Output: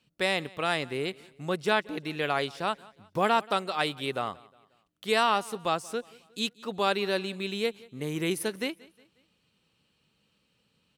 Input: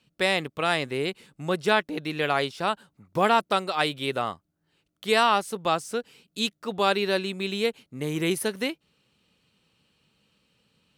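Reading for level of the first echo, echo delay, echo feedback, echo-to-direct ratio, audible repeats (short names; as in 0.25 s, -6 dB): -23.0 dB, 0.18 s, 44%, -22.0 dB, 2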